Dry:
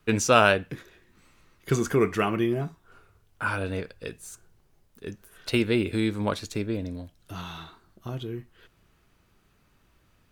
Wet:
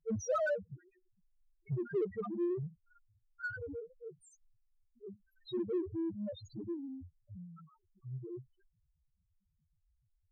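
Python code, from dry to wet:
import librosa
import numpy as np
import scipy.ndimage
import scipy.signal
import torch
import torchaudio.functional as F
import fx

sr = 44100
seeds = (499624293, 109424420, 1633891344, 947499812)

p1 = fx.low_shelf(x, sr, hz=110.0, db=-4.0)
p2 = fx.spec_topn(p1, sr, count=1)
p3 = 10.0 ** (-37.5 / 20.0) * np.tanh(p2 / 10.0 ** (-37.5 / 20.0))
p4 = p2 + (p3 * 10.0 ** (-6.0 / 20.0))
y = p4 * 10.0 ** (-4.0 / 20.0)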